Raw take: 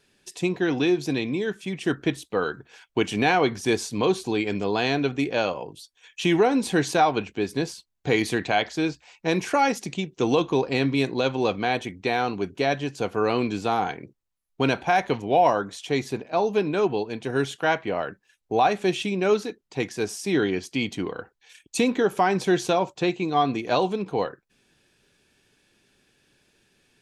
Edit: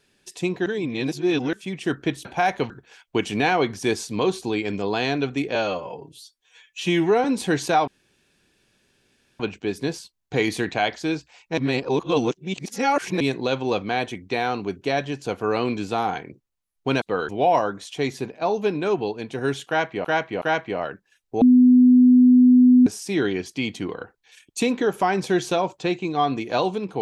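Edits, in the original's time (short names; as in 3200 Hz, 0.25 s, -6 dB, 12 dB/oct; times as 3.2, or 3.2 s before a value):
0.66–1.53 reverse
2.25–2.52 swap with 14.75–15.2
5.37–6.5 stretch 1.5×
7.13 insert room tone 1.52 s
9.31–10.94 reverse
17.59–17.96 loop, 3 plays
18.59–20.04 bleep 250 Hz -9.5 dBFS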